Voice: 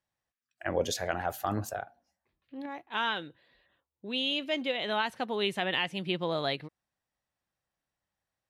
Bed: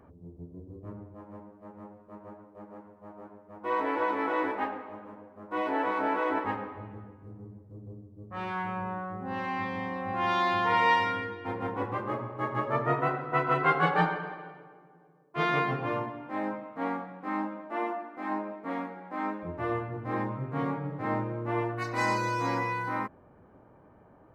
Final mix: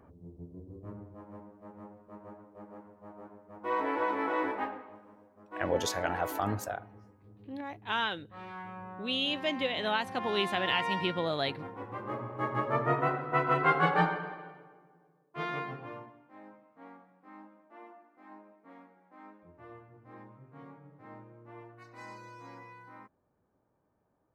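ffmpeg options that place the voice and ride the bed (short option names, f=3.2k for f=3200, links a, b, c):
-filter_complex "[0:a]adelay=4950,volume=-0.5dB[a];[1:a]volume=7dB,afade=t=out:st=4.53:d=0.49:silence=0.398107,afade=t=in:st=11.85:d=0.53:silence=0.354813,afade=t=out:st=13.98:d=2.3:silence=0.11885[b];[a][b]amix=inputs=2:normalize=0"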